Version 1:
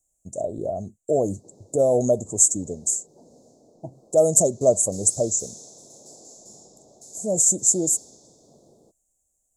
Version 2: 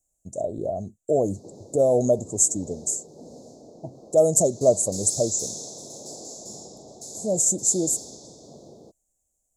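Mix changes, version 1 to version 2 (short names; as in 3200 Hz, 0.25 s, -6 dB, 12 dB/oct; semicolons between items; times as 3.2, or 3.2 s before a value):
background +9.0 dB; master: add graphic EQ 2000/4000/8000 Hz -6/+4/-4 dB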